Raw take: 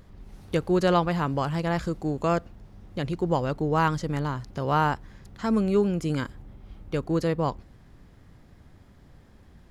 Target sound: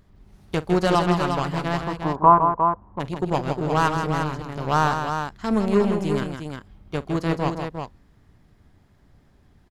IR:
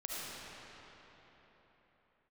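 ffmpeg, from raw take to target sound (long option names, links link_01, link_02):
-filter_complex "[0:a]bandreject=frequency=510:width=12,aeval=exprs='0.355*(cos(1*acos(clip(val(0)/0.355,-1,1)))-cos(1*PI/2))+0.0501*(cos(5*acos(clip(val(0)/0.355,-1,1)))-cos(5*PI/2))+0.0631*(cos(7*acos(clip(val(0)/0.355,-1,1)))-cos(7*PI/2))':channel_layout=same,asplit=3[link_01][link_02][link_03];[link_01]afade=type=out:start_time=1.79:duration=0.02[link_04];[link_02]lowpass=frequency=1000:width_type=q:width=9.7,afade=type=in:start_time=1.79:duration=0.02,afade=type=out:start_time=2.99:duration=0.02[link_05];[link_03]afade=type=in:start_time=2.99:duration=0.02[link_06];[link_04][link_05][link_06]amix=inputs=3:normalize=0,aecho=1:1:46|160|356:0.119|0.447|0.473,volume=1.5dB"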